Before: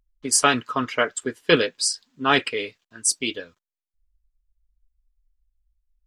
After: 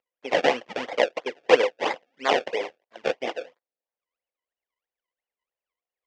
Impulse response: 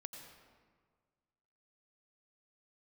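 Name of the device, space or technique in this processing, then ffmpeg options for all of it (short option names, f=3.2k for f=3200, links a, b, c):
circuit-bent sampling toy: -af "acrusher=samples=30:mix=1:aa=0.000001:lfo=1:lforange=30:lforate=3,highpass=490,equalizer=f=510:t=q:w=4:g=9,equalizer=f=730:t=q:w=4:g=3,equalizer=f=1.3k:t=q:w=4:g=-5,equalizer=f=2k:t=q:w=4:g=6,equalizer=f=2.9k:t=q:w=4:g=5,equalizer=f=4.1k:t=q:w=4:g=-5,lowpass=f=5.3k:w=0.5412,lowpass=f=5.3k:w=1.3066,volume=-1.5dB"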